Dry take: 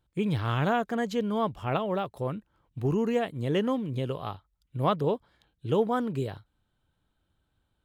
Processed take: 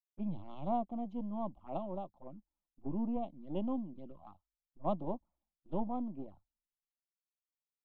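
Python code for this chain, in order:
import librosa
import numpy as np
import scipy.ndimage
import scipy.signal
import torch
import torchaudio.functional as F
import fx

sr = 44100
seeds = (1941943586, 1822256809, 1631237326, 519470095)

y = np.where(x < 0.0, 10.0 ** (-7.0 / 20.0) * x, x)
y = scipy.signal.sosfilt(scipy.signal.butter(2, 1200.0, 'lowpass', fs=sr, output='sos'), y)
y = fx.fixed_phaser(y, sr, hz=440.0, stages=6)
y = fx.env_flanger(y, sr, rest_ms=8.7, full_db=-32.0)
y = fx.band_widen(y, sr, depth_pct=100)
y = y * 10.0 ** (-3.5 / 20.0)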